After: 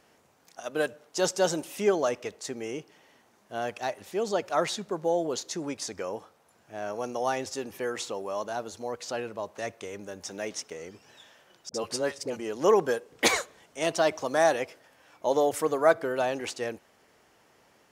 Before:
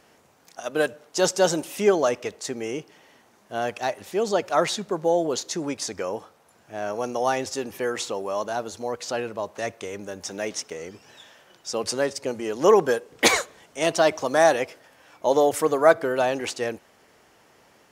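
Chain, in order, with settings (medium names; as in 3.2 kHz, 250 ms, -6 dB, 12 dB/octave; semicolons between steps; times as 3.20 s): 11.69–12.37 s: phase dispersion highs, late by 52 ms, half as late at 750 Hz; trim -5 dB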